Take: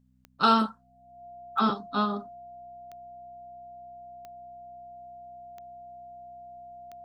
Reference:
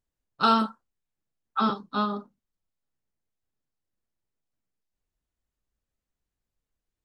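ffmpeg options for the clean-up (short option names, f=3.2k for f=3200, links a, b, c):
-af "adeclick=t=4,bandreject=f=63.3:t=h:w=4,bandreject=f=126.6:t=h:w=4,bandreject=f=189.9:t=h:w=4,bandreject=f=253.2:t=h:w=4,bandreject=f=700:w=30"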